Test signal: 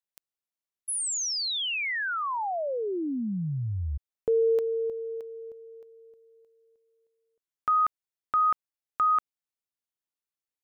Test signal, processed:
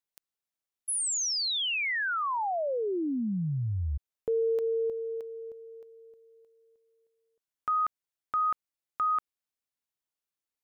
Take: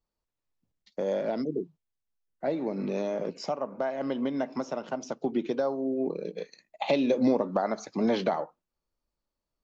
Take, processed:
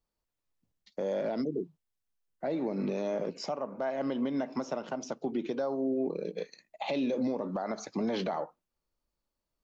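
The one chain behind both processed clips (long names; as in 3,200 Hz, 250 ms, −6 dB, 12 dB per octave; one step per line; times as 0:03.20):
brickwall limiter −23.5 dBFS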